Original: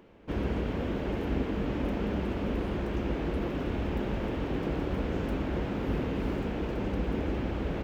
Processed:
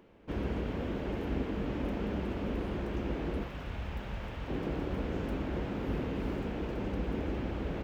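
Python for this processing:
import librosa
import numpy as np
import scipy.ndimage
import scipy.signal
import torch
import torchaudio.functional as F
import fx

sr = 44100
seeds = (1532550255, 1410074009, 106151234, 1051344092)

y = fx.peak_eq(x, sr, hz=320.0, db=-13.0, octaves=1.5, at=(3.43, 4.48))
y = y * librosa.db_to_amplitude(-3.5)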